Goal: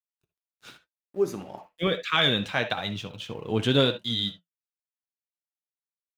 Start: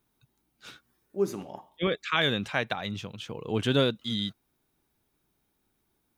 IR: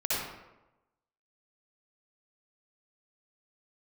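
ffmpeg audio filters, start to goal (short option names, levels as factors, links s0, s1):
-filter_complex "[0:a]adynamicequalizer=threshold=0.00708:dfrequency=3600:dqfactor=2.4:tfrequency=3600:tqfactor=2.4:attack=5:release=100:ratio=0.375:range=2.5:mode=boostabove:tftype=bell,acontrast=45,aeval=exprs='sgn(val(0))*max(abs(val(0))-0.00282,0)':c=same,flanger=delay=6.5:depth=2.6:regen=-60:speed=1:shape=sinusoidal,asplit=2[s0][s1];[1:a]atrim=start_sample=2205,atrim=end_sample=3528,highshelf=f=5300:g=-11.5[s2];[s1][s2]afir=irnorm=-1:irlink=0,volume=0.266[s3];[s0][s3]amix=inputs=2:normalize=0,volume=0.841"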